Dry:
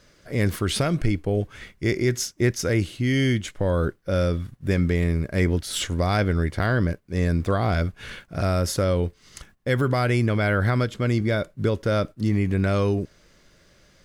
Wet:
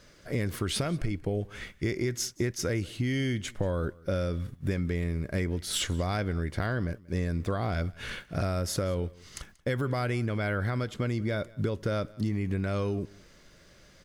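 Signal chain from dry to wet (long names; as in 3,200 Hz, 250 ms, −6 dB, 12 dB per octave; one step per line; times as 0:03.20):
downward compressor, threshold −26 dBFS, peak gain reduction 10.5 dB
on a send: single-tap delay 184 ms −23.5 dB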